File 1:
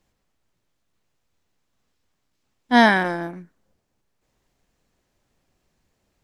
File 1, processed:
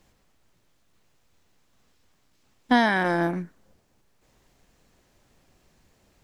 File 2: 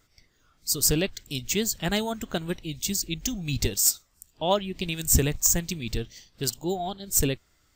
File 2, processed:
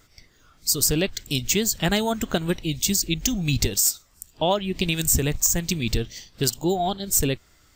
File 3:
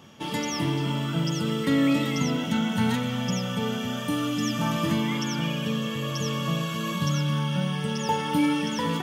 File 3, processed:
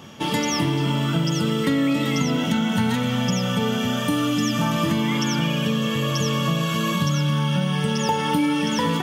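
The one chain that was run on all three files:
downward compressor 5 to 1, threshold −26 dBFS
level +8 dB

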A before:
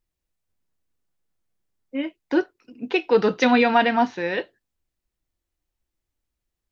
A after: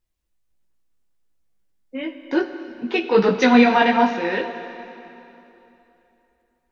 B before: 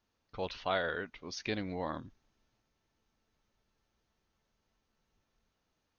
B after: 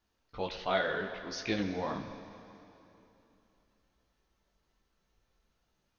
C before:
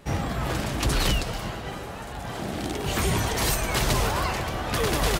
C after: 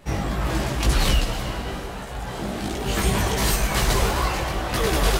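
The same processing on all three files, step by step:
multi-voice chorus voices 6, 1.3 Hz, delay 18 ms, depth 3 ms
dense smooth reverb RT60 3.1 s, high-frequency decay 0.9×, DRR 8 dB
level +4.5 dB

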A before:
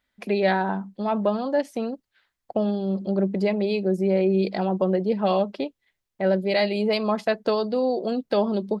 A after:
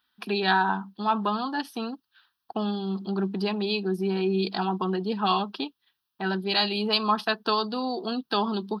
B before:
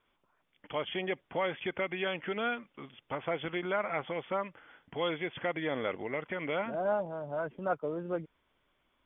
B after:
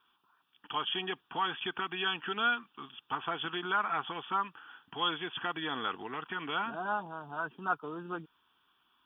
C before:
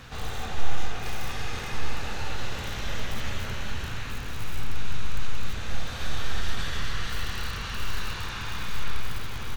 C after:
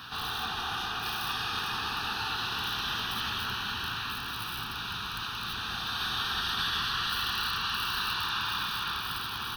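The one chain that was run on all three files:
high-pass filter 630 Hz 6 dB per octave
phaser with its sweep stopped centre 2,100 Hz, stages 6
level +8 dB

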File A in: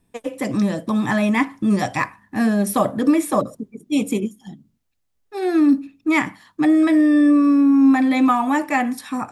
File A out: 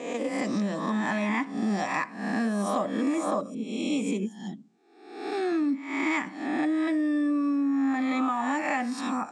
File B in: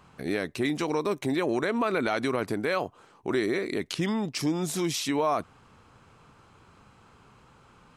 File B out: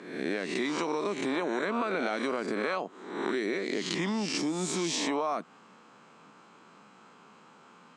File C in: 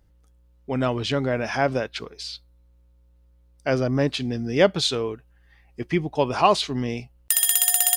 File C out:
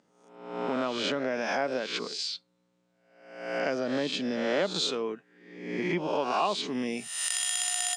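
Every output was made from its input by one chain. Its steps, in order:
peak hold with a rise ahead of every peak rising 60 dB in 0.79 s
elliptic band-pass filter 190–7,800 Hz, stop band 40 dB
downward compressor 3 to 1, threshold −28 dBFS

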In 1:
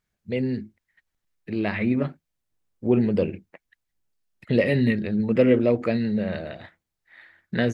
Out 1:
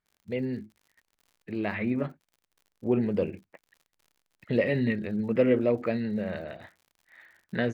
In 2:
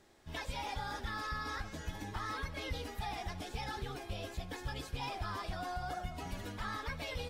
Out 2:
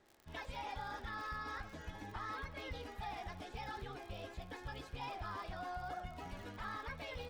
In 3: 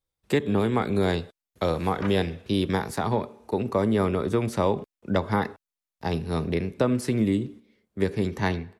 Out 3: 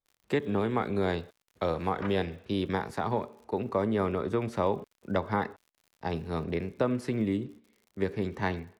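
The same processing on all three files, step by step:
low-pass filter 2,000 Hz 6 dB per octave
low-shelf EQ 450 Hz −6 dB
surface crackle 72 per second −48 dBFS
level −1 dB

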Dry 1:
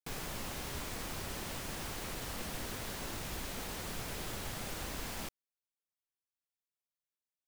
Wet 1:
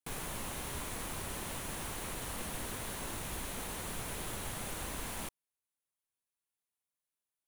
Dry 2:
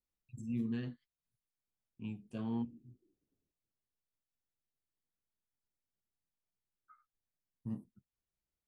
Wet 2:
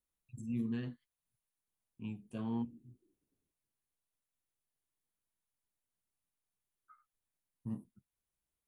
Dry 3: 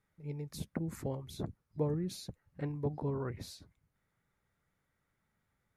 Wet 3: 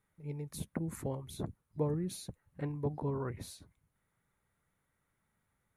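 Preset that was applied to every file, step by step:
thirty-one-band graphic EQ 1,000 Hz +3 dB, 5,000 Hz −6 dB, 10,000 Hz +8 dB

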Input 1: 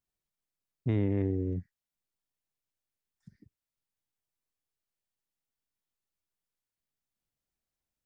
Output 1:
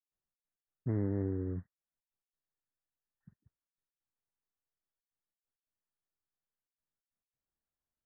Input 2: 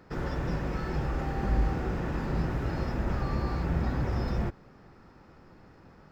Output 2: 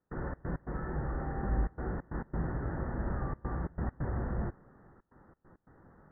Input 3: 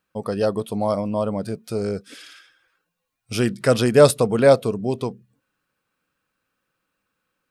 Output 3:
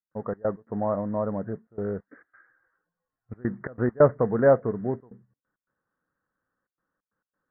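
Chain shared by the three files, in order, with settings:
gate pattern ".xx.x.xxxxxxxxx" 135 BPM −24 dB
noise that follows the level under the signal 18 dB
Butterworth low-pass 1,900 Hz 96 dB per octave
level −4.5 dB

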